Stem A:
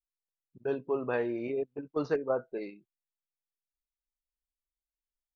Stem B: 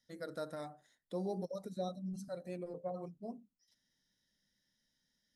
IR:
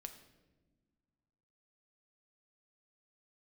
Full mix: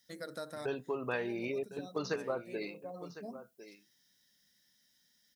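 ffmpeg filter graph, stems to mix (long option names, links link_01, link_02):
-filter_complex "[0:a]acompressor=threshold=-30dB:ratio=4,lowshelf=frequency=110:gain=11.5,volume=-4.5dB,asplit=3[link_01][link_02][link_03];[link_02]volume=-14dB[link_04];[1:a]lowpass=frequency=1800:poles=1,acompressor=threshold=-48dB:ratio=2,volume=2.5dB[link_05];[link_03]apad=whole_len=236218[link_06];[link_05][link_06]sidechaincompress=threshold=-44dB:ratio=4:attack=10:release=624[link_07];[link_04]aecho=0:1:1055:1[link_08];[link_01][link_07][link_08]amix=inputs=3:normalize=0,highpass=83,crystalizer=i=9:c=0"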